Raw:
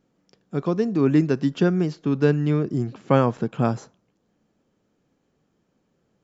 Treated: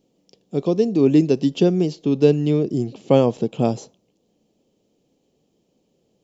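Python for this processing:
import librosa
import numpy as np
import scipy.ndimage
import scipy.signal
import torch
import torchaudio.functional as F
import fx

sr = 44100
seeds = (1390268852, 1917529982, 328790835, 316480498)

y = fx.curve_eq(x, sr, hz=(120.0, 480.0, 800.0, 1500.0, 2900.0), db=(0, 7, 2, -13, 7))
y = y * librosa.db_to_amplitude(-1.0)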